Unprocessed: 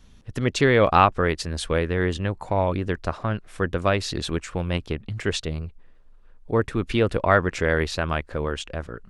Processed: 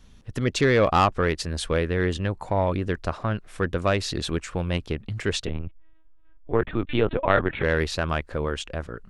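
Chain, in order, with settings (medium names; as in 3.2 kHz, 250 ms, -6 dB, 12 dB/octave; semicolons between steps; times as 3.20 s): saturation -10.5 dBFS, distortion -16 dB; 5.47–7.63 s: LPC vocoder at 8 kHz pitch kept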